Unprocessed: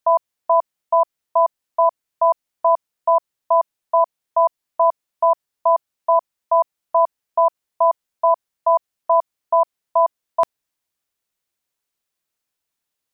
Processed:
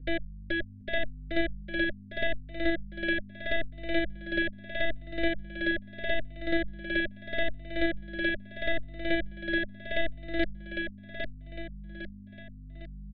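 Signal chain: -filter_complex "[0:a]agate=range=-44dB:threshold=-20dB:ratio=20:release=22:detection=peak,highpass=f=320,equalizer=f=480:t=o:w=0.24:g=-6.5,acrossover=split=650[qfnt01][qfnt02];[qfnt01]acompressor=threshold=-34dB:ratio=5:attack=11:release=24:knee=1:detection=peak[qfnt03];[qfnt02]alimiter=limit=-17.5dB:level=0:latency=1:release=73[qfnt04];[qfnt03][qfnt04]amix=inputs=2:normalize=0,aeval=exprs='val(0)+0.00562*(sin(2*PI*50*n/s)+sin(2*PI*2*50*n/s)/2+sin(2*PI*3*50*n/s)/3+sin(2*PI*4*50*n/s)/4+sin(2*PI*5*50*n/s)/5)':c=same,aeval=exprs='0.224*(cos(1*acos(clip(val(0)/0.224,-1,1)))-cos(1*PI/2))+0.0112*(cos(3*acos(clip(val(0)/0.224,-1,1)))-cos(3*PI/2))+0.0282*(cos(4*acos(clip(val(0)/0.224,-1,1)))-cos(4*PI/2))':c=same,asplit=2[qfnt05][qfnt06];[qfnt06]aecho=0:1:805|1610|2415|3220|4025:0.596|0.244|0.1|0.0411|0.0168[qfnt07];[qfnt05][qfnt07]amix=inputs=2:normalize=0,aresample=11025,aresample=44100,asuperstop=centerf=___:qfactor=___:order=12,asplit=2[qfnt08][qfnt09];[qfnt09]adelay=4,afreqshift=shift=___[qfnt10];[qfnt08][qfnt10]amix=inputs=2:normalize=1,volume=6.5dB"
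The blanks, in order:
960, 0.99, 0.78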